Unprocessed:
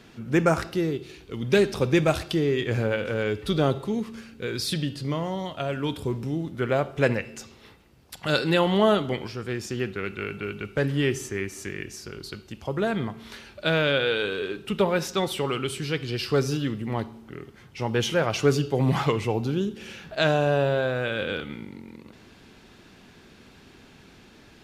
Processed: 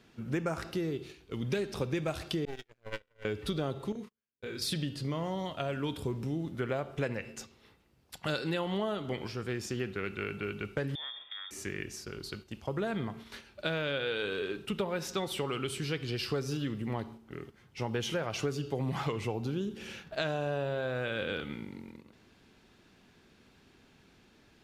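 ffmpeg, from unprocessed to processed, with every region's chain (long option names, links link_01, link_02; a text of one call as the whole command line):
ffmpeg -i in.wav -filter_complex "[0:a]asettb=1/sr,asplit=3[link_01][link_02][link_03];[link_01]atrim=end=2.454[link_04];[link_02]atrim=start=2.45:end=3.25,asetpts=PTS-STARTPTS,afade=type=in:duration=0.004:curve=qsin,afade=type=out:start_time=0.796:duration=0.004:curve=qsin,equalizer=frequency=140:width=0.49:gain=-10.5,agate=range=-33dB:threshold=-28dB:ratio=16:release=100:detection=peak,aeval=exprs='max(val(0),0)':channel_layout=same[link_05];[link_03]atrim=start=3.246[link_06];[link_04][link_05]acrossfade=duration=0.004:curve1=hsin:curve2=qsin[link_07];[link_07][link_06]acrossfade=duration=0.004:curve1=qsin:curve2=hsin,asettb=1/sr,asplit=3[link_08][link_09][link_10];[link_08]atrim=end=3.924[link_11];[link_09]atrim=start=3.92:end=4.62,asetpts=PTS-STARTPTS,afade=type=in:duration=0.004:curve=qsin,afade=type=out:start_time=0.696:duration=0.004:curve=qsin,agate=range=-43dB:threshold=-34dB:ratio=16:release=100:detection=peak,acompressor=threshold=-33dB:ratio=12:attack=3.2:release=140:knee=1:detection=peak,asplit=2[link_12][link_13];[link_13]adelay=29,volume=-3.5dB[link_14];[link_12][link_14]amix=inputs=2:normalize=0,atrim=end_sample=30870[link_15];[link_10]atrim=start=4.616[link_16];[link_11][link_15]acrossfade=duration=0.004:curve1=hsin:curve2=qsin[link_17];[link_17][link_16]acrossfade=duration=0.004:curve1=qsin:curve2=hsin,asettb=1/sr,asplit=3[link_18][link_19][link_20];[link_18]atrim=end=10.954[link_21];[link_19]atrim=start=10.95:end=11.51,asetpts=PTS-STARTPTS,afade=type=in:duration=0.004:curve=qsin,afade=type=out:start_time=0.556:duration=0.004:curve=qsin,acompressor=threshold=-34dB:ratio=8:attack=3.2:release=140:knee=1:detection=peak,lowpass=frequency=3100:width_type=q:width=0.5098,lowpass=frequency=3100:width_type=q:width=0.6013,lowpass=frequency=3100:width_type=q:width=0.9,lowpass=frequency=3100:width_type=q:width=2.563,afreqshift=-3700[link_22];[link_20]atrim=start=11.506[link_23];[link_21][link_22]acrossfade=duration=0.004:curve1=hsin:curve2=qsin[link_24];[link_24][link_23]acrossfade=duration=0.004:curve1=qsin:curve2=hsin,acompressor=threshold=-26dB:ratio=6,agate=range=-7dB:threshold=-42dB:ratio=16:detection=peak,volume=-3.5dB" out.wav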